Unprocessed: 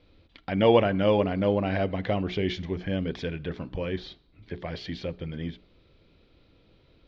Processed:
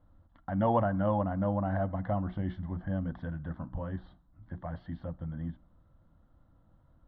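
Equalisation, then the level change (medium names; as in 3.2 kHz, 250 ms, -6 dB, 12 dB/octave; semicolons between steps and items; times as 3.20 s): Bessel low-pass 1.5 kHz, order 4; hum notches 60/120/180 Hz; static phaser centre 1 kHz, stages 4; 0.0 dB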